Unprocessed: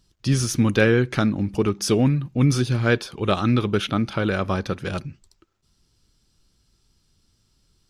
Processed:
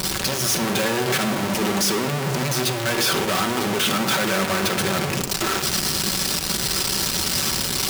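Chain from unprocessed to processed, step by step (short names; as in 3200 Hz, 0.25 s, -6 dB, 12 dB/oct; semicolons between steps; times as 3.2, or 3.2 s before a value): infinite clipping; HPF 330 Hz 6 dB/oct; on a send: reverb RT60 0.95 s, pre-delay 5 ms, DRR 4 dB; on the sum: gain +2.5 dB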